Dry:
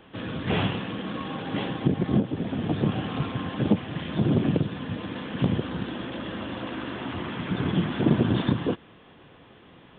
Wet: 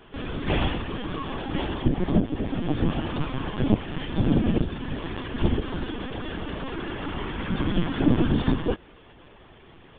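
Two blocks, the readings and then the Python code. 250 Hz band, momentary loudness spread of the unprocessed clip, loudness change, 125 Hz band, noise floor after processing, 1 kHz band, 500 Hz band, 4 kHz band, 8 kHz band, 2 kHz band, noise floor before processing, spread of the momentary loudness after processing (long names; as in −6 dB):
+0.5 dB, 10 LU, +0.5 dB, −0.5 dB, −51 dBFS, +1.0 dB, +0.5 dB, +0.5 dB, can't be measured, +0.5 dB, −52 dBFS, 10 LU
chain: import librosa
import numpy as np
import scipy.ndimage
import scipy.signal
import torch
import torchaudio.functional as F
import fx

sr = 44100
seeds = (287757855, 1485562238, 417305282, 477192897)

y = fx.lpc_vocoder(x, sr, seeds[0], excitation='pitch_kept', order=16)
y = y * librosa.db_to_amplitude(1.5)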